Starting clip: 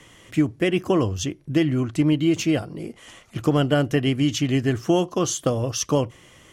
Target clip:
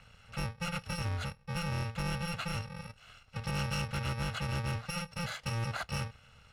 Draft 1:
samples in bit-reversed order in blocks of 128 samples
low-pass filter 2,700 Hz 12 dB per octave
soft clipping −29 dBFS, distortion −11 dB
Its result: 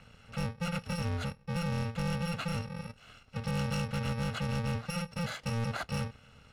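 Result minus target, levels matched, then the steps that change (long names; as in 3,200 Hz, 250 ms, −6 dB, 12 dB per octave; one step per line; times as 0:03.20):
250 Hz band +3.5 dB
add after low-pass filter: parametric band 290 Hz −11 dB 1.4 octaves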